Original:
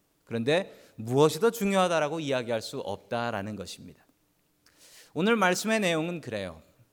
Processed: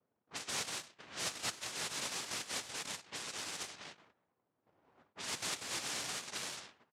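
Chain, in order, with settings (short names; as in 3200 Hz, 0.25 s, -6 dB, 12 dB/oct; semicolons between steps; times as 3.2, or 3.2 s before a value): resonant high shelf 2300 Hz -10 dB, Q 3; on a send: echo 0.19 s -14 dB; on the sum: dynamic EQ 220 Hz, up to -6 dB, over -42 dBFS, Q 2; reverse; compressor 5:1, threshold -37 dBFS, peak gain reduction 19 dB; reverse; noise vocoder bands 1; low-pass opened by the level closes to 650 Hz, open at -37 dBFS; gain -2 dB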